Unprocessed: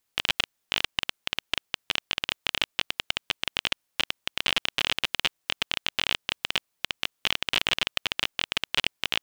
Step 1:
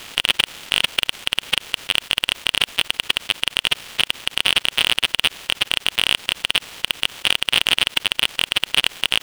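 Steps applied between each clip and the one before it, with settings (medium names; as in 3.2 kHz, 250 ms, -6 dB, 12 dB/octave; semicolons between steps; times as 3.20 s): spectral levelling over time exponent 0.4; in parallel at +2 dB: peak limiter -11.5 dBFS, peak gain reduction 11.5 dB; on the sum: waveshaping leveller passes 3; trim -4 dB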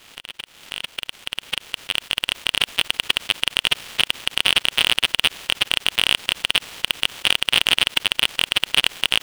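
fade-in on the opening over 2.98 s; upward compressor, threshold -28 dBFS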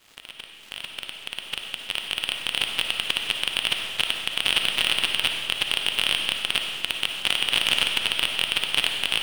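companding laws mixed up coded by A; reverberation RT60 1.9 s, pre-delay 15 ms, DRR 2.5 dB; trim -5.5 dB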